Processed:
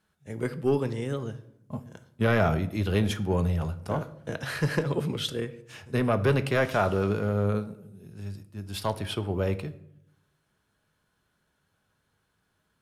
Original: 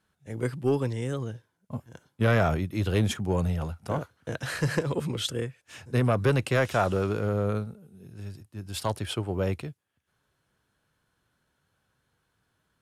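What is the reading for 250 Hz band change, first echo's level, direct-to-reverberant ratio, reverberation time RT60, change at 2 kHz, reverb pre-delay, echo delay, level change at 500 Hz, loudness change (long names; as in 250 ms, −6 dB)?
+1.0 dB, no echo audible, 10.0 dB, 0.75 s, +0.5 dB, 5 ms, no echo audible, +0.5 dB, 0.0 dB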